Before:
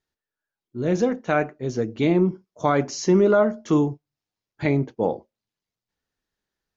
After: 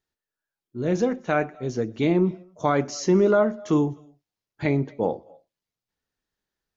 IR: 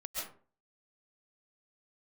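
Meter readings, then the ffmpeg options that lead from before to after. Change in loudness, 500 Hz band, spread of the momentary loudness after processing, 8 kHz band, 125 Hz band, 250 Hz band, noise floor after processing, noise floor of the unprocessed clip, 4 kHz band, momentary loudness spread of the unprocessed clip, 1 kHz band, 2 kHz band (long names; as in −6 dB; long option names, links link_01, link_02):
−1.5 dB, −1.5 dB, 10 LU, can't be measured, −1.5 dB, −1.5 dB, below −85 dBFS, below −85 dBFS, −1.5 dB, 10 LU, −1.5 dB, −1.5 dB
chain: -filter_complex "[0:a]asplit=2[link_01][link_02];[1:a]atrim=start_sample=2205,atrim=end_sample=6174,adelay=122[link_03];[link_02][link_03]afir=irnorm=-1:irlink=0,volume=-22dB[link_04];[link_01][link_04]amix=inputs=2:normalize=0,volume=-1.5dB"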